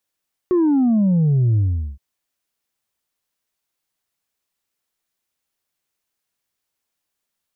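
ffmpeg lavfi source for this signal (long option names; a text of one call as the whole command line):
ffmpeg -f lavfi -i "aevalsrc='0.211*clip((1.47-t)/0.41,0,1)*tanh(1.26*sin(2*PI*370*1.47/log(65/370)*(exp(log(65/370)*t/1.47)-1)))/tanh(1.26)':duration=1.47:sample_rate=44100" out.wav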